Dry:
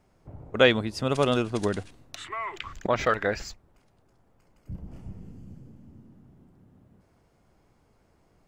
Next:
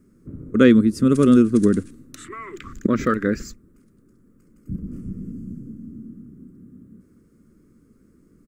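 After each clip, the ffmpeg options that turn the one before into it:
-af "firequalizer=gain_entry='entry(110,0);entry(230,13);entry(490,-2);entry(780,-29);entry(1200,-2);entry(2900,-13);entry(8200,3)':delay=0.05:min_phase=1,volume=1.68"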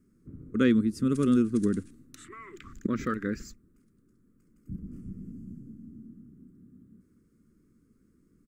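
-af "equalizer=f=660:w=1.5:g=-8,volume=0.376"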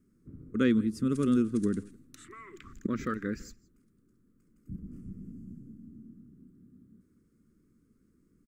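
-af "aecho=1:1:167:0.0668,volume=0.75"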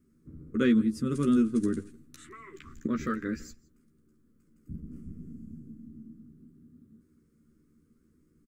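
-filter_complex "[0:a]asplit=2[s0][s1];[s1]adelay=13,volume=0.596[s2];[s0][s2]amix=inputs=2:normalize=0"

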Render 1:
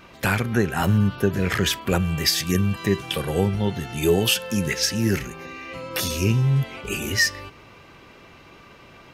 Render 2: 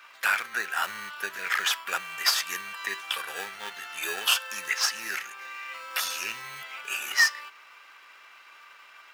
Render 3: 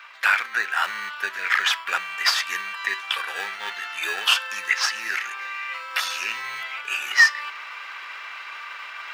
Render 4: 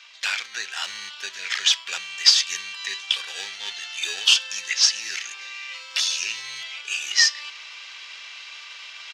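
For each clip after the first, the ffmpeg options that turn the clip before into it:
-filter_complex "[0:a]asplit=2[s0][s1];[s1]acrusher=samples=21:mix=1:aa=0.000001,volume=0.447[s2];[s0][s2]amix=inputs=2:normalize=0,highpass=f=1400:t=q:w=1.9,volume=0.631"
-af "equalizer=f=125:t=o:w=1:g=-9,equalizer=f=1000:t=o:w=1:g=4,equalizer=f=2000:t=o:w=1:g=6,equalizer=f=4000:t=o:w=1:g=4,equalizer=f=16000:t=o:w=1:g=-9,areverse,acompressor=mode=upward:threshold=0.0501:ratio=2.5,areverse"
-af "firequalizer=gain_entry='entry(110,0);entry(240,-9);entry(420,-7);entry(1300,-15);entry(3200,4);entry(6300,9);entry(12000,-12)':delay=0.05:min_phase=1,volume=1.12"

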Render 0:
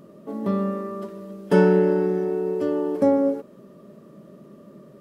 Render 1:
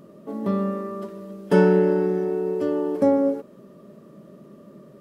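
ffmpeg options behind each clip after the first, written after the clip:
-af anull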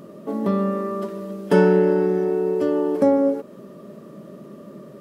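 -filter_complex "[0:a]lowshelf=f=98:g=-7,asplit=2[s0][s1];[s1]acompressor=threshold=0.0355:ratio=6,volume=1.19[s2];[s0][s2]amix=inputs=2:normalize=0"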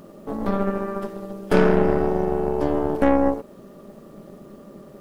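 -af "aeval=exprs='0.794*(cos(1*acos(clip(val(0)/0.794,-1,1)))-cos(1*PI/2))+0.1*(cos(8*acos(clip(val(0)/0.794,-1,1)))-cos(8*PI/2))':c=same,acrusher=bits=9:mix=0:aa=0.000001,tremolo=f=210:d=0.571"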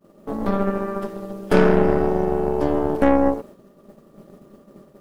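-af "agate=range=0.0224:threshold=0.0158:ratio=3:detection=peak,volume=1.19"

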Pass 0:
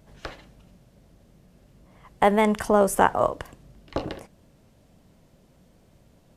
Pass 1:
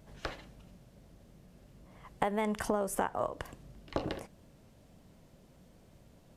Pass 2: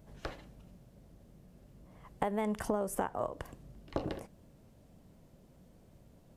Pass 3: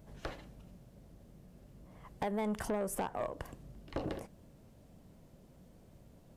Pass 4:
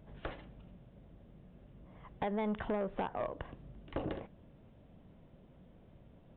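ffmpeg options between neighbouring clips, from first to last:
-af "acompressor=threshold=0.0501:ratio=8,volume=0.794"
-af "equalizer=f=3200:w=0.3:g=-5.5"
-af "asoftclip=type=tanh:threshold=0.0355,volume=1.12"
-af "aresample=8000,aresample=44100"

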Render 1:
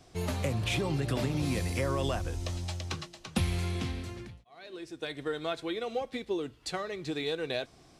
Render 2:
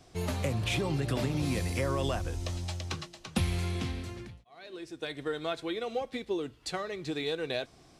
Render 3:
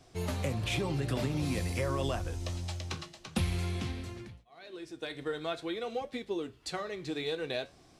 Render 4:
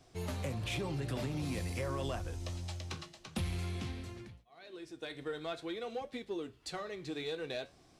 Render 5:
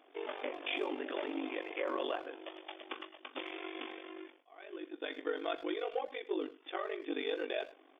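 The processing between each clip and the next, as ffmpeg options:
-af anull
-af "flanger=delay=7.4:depth=9.4:regen=-71:speed=0.49:shape=triangular,volume=1.33"
-af "asoftclip=type=tanh:threshold=0.0596,volume=0.668"
-filter_complex "[0:a]afftfilt=real='re*between(b*sr/4096,270,3600)':imag='im*between(b*sr/4096,270,3600)':win_size=4096:overlap=0.75,asplit=2[s0][s1];[s1]adelay=100,highpass=300,lowpass=3400,asoftclip=type=hard:threshold=0.0126,volume=0.158[s2];[s0][s2]amix=inputs=2:normalize=0,aeval=exprs='val(0)*sin(2*PI*24*n/s)':c=same,volume=2"

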